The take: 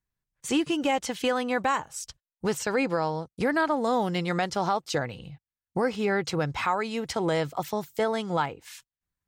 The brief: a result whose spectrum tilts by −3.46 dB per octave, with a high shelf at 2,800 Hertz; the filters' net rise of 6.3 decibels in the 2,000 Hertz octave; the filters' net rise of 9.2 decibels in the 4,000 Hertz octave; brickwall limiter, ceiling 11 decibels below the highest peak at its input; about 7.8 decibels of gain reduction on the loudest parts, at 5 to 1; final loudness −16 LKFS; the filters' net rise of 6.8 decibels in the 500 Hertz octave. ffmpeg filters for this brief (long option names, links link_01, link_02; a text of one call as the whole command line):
ffmpeg -i in.wav -af "equalizer=frequency=500:width_type=o:gain=7.5,equalizer=frequency=2000:width_type=o:gain=4.5,highshelf=frequency=2800:gain=3,equalizer=frequency=4000:width_type=o:gain=8,acompressor=threshold=-24dB:ratio=5,volume=17.5dB,alimiter=limit=-6dB:level=0:latency=1" out.wav